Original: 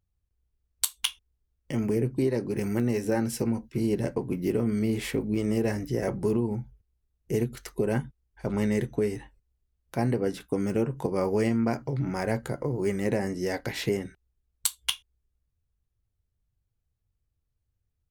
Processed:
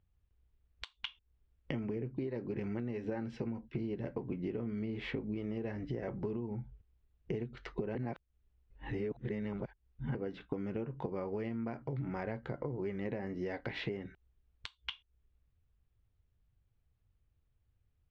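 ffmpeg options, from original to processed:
ffmpeg -i in.wav -filter_complex "[0:a]asplit=3[link_01][link_02][link_03];[link_01]atrim=end=7.952[link_04];[link_02]atrim=start=7.948:end=10.152,asetpts=PTS-STARTPTS,areverse[link_05];[link_03]atrim=start=10.148[link_06];[link_04][link_05]acrossfade=duration=0.004:curve1=hsin:curve2=hsin[link_07];[link_07][link_06]acrossfade=duration=0.004:curve1=hsin:curve2=hsin,acompressor=threshold=-38dB:ratio=12,lowpass=frequency=3500:width=0.5412,lowpass=frequency=3500:width=1.3066,volume=3.5dB" out.wav

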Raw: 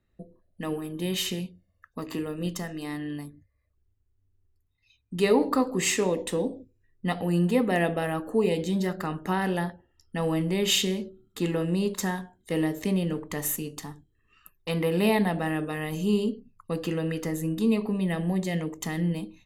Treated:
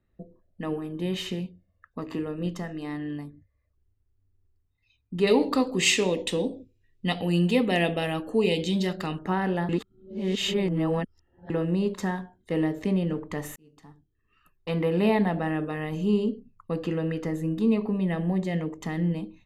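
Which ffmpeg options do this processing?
ffmpeg -i in.wav -filter_complex "[0:a]asettb=1/sr,asplit=3[link_01][link_02][link_03];[link_01]atrim=end=5.274[link_04];[link_02]atrim=start=5.27:end=9.19,asetpts=PTS-STARTPTS,afade=type=in:duration=0.004:curve=qsin,afade=type=out:start_time=3.916:duration=0.004:curve=qsin,highshelf=frequency=2100:width_type=q:width=1.5:gain=10.5[link_05];[link_03]atrim=start=9.186[link_06];[link_04][link_05]acrossfade=duration=0.004:curve1=hsin:curve2=qsin[link_07];[link_07][link_06]acrossfade=duration=0.004:curve1=qsin:curve2=hsin,asplit=4[link_08][link_09][link_10][link_11];[link_08]atrim=end=9.692[link_12];[link_09]atrim=start=9.688:end=11.502,asetpts=PTS-STARTPTS,areverse[link_13];[link_10]atrim=start=11.498:end=13.56,asetpts=PTS-STARTPTS,afade=type=out:start_time=2.058:duration=0.004:curve=hsin[link_14];[link_11]atrim=start=13.56,asetpts=PTS-STARTPTS,afade=type=in:duration=1.14[link_15];[link_12][link_13]acrossfade=duration=0.004:curve1=hsin:curve2=hsin[link_16];[link_14][link_15]concat=n=2:v=0:a=1[link_17];[link_16][link_17]acrossfade=duration=0.004:curve1=hsin:curve2=hsin,aemphasis=mode=reproduction:type=75fm" out.wav

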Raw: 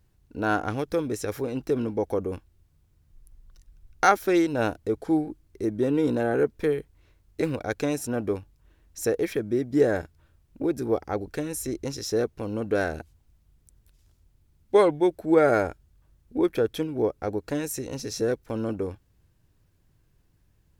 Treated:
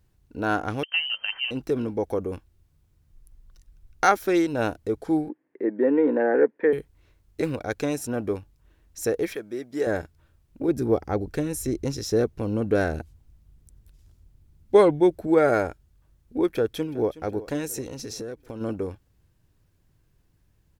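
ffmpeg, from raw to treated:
ffmpeg -i in.wav -filter_complex "[0:a]asettb=1/sr,asplit=3[link_01][link_02][link_03];[link_01]atrim=end=0.834[link_04];[link_02]atrim=start=0.83:end=1.51,asetpts=PTS-STARTPTS,afade=type=in:duration=0.004:curve=qsin,afade=type=out:start_time=0.676:duration=0.004:curve=qsin,lowpass=frequency=2700:width_type=q:width=0.5098,lowpass=frequency=2700:width_type=q:width=0.6013,lowpass=frequency=2700:width_type=q:width=0.9,lowpass=frequency=2700:width_type=q:width=2.563,afreqshift=-3200[link_05];[link_03]atrim=start=1.506[link_06];[link_04][link_05]acrossfade=duration=0.004:curve1=hsin:curve2=qsin[link_07];[link_07][link_06]acrossfade=duration=0.004:curve1=qsin:curve2=hsin,asettb=1/sr,asplit=3[link_08][link_09][link_10];[link_08]atrim=end=5.294[link_11];[link_09]atrim=start=5.29:end=6.73,asetpts=PTS-STARTPTS,afade=type=in:duration=0.004:curve=qsin,afade=type=out:start_time=1.436:duration=0.004:curve=qsin,highpass=frequency=230:width=0.5412,highpass=frequency=230:width=1.3066,equalizer=frequency=270:width_type=q:width=4:gain=4,equalizer=frequency=510:width_type=q:width=4:gain=7,equalizer=frequency=890:width_type=q:width=4:gain=5,equalizer=frequency=1300:width_type=q:width=4:gain=-4,equalizer=frequency=1800:width_type=q:width=4:gain=10,lowpass=frequency=2200:width=0.5412,lowpass=frequency=2200:width=1.3066[link_12];[link_10]atrim=start=6.726[link_13];[link_11][link_12]acrossfade=duration=0.004:curve1=hsin:curve2=qsin[link_14];[link_14][link_13]acrossfade=duration=0.004:curve1=qsin:curve2=hsin,asettb=1/sr,asplit=3[link_15][link_16][link_17];[link_15]atrim=end=9.354[link_18];[link_16]atrim=start=9.35:end=9.87,asetpts=PTS-STARTPTS,afade=type=in:duration=0.004:curve=qsin,afade=type=out:start_time=0.516:duration=0.004:curve=qsin,highpass=frequency=720:poles=1[link_19];[link_17]atrim=start=9.866[link_20];[link_18][link_19]acrossfade=duration=0.004:curve1=hsin:curve2=qsin[link_21];[link_21][link_20]acrossfade=duration=0.004:curve1=qsin:curve2=hsin,asettb=1/sr,asplit=3[link_22][link_23][link_24];[link_22]atrim=end=10.684[link_25];[link_23]atrim=start=10.68:end=15.27,asetpts=PTS-STARTPTS,afade=type=in:duration=0.004:curve=qsin,afade=type=out:start_time=4.586:duration=0.004:curve=qsin,lowshelf=frequency=340:gain=7[link_26];[link_24]atrim=start=15.266[link_27];[link_25][link_26]acrossfade=duration=0.004:curve1=hsin:curve2=qsin[link_28];[link_28][link_27]acrossfade=duration=0.004:curve1=qsin:curve2=hsin,asplit=2[link_29][link_30];[link_30]afade=type=in:start_time=16.5:duration=0.01,afade=type=out:start_time=17.22:duration=0.01,aecho=0:1:370|740|1110|1480|1850:0.141254|0.0776896|0.0427293|0.0235011|0.0129256[link_31];[link_29][link_31]amix=inputs=2:normalize=0,asplit=3[link_32][link_33][link_34];[link_32]afade=type=out:start_time=17.85:duration=0.02[link_35];[link_33]acompressor=threshold=-31dB:ratio=6:attack=3.2:release=140:knee=1:detection=peak,afade=type=in:start_time=17.85:duration=0.02,afade=type=out:start_time=18.6:duration=0.02[link_36];[link_34]afade=type=in:start_time=18.6:duration=0.02[link_37];[link_35][link_36][link_37]amix=inputs=3:normalize=0" out.wav

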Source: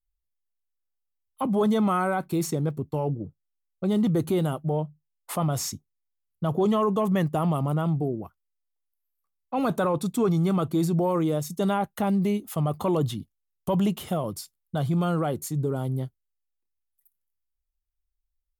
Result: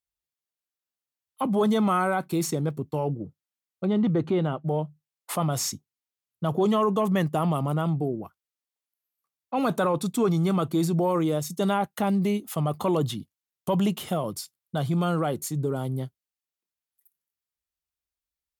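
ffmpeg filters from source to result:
ffmpeg -i in.wav -filter_complex "[0:a]asettb=1/sr,asplit=3[link_01][link_02][link_03];[link_01]atrim=end=3.854[link_04];[link_02]atrim=start=3.85:end=4.65,asetpts=PTS-STARTPTS,afade=type=in:duration=0.004:curve=qsin,afade=type=out:start_time=0.796:duration=0.004:curve=qsin,lowpass=2700[link_05];[link_03]atrim=start=4.646[link_06];[link_04][link_05]acrossfade=duration=0.004:curve1=hsin:curve2=qsin[link_07];[link_07][link_06]acrossfade=duration=0.004:curve1=qsin:curve2=hsin,highpass=110,equalizer=frequency=4000:width=0.34:gain=3" out.wav

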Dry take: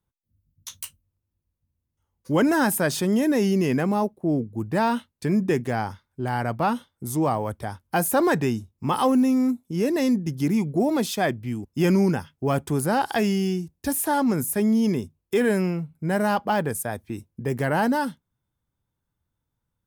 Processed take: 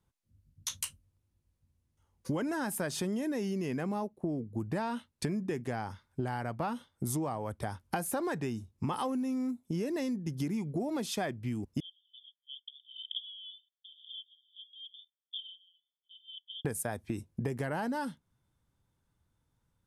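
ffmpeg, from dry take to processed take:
ffmpeg -i in.wav -filter_complex "[0:a]asettb=1/sr,asplit=3[link_01][link_02][link_03];[link_01]atrim=end=11.804[link_04];[link_02]atrim=start=11.8:end=16.65,asetpts=PTS-STARTPTS,afade=type=in:duration=0.004:curve=qsin,afade=type=out:start_time=4.846:duration=0.004:curve=qsin,asuperpass=centerf=3300:order=20:qfactor=5.7[link_05];[link_03]atrim=start=16.646[link_06];[link_04][link_05]acrossfade=duration=0.004:curve1=hsin:curve2=qsin[link_07];[link_07][link_06]acrossfade=duration=0.004:curve1=qsin:curve2=hsin,lowpass=frequency=12000:width=0.5412,lowpass=frequency=12000:width=1.3066,acompressor=threshold=-34dB:ratio=16,volume=3.5dB" out.wav

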